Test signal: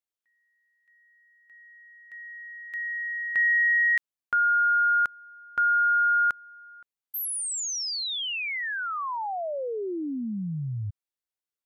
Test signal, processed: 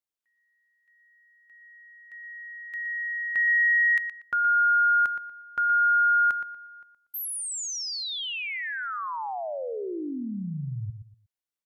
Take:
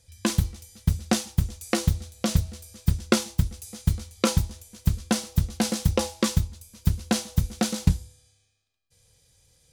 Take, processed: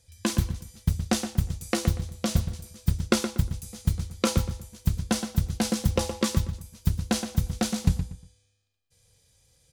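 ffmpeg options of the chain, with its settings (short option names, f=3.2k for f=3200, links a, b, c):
-filter_complex "[0:a]asplit=2[a][b];[b]adelay=119,lowpass=f=3k:p=1,volume=-8.5dB,asplit=2[c][d];[d]adelay=119,lowpass=f=3k:p=1,volume=0.28,asplit=2[e][f];[f]adelay=119,lowpass=f=3k:p=1,volume=0.28[g];[a][c][e][g]amix=inputs=4:normalize=0,volume=-2dB"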